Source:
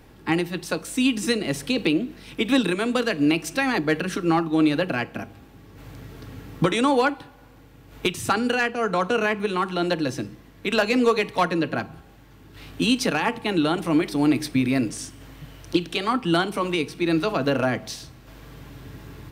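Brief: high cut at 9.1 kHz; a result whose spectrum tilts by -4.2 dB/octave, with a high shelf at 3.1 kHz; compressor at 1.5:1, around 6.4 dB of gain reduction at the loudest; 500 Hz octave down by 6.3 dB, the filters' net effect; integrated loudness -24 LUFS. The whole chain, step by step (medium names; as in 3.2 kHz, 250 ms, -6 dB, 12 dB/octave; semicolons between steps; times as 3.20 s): low-pass 9.1 kHz; peaking EQ 500 Hz -8 dB; treble shelf 3.1 kHz -6.5 dB; compression 1.5:1, threshold -36 dBFS; trim +8 dB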